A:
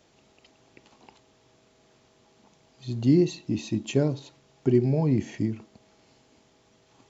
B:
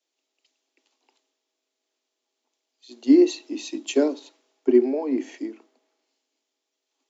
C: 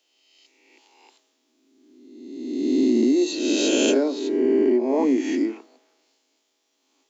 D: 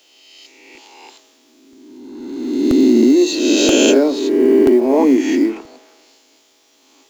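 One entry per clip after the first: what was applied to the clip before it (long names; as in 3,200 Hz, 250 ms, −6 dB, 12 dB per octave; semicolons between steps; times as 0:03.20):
Butterworth high-pass 250 Hz 96 dB per octave; multiband upward and downward expander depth 70%
peak hold with a rise ahead of every peak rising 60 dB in 1.43 s; downward compressor 16 to 1, threshold −22 dBFS, peak gain reduction 14 dB; level +6.5 dB
mu-law and A-law mismatch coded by mu; regular buffer underruns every 0.98 s, samples 64, repeat, from 0:00.75; level +7.5 dB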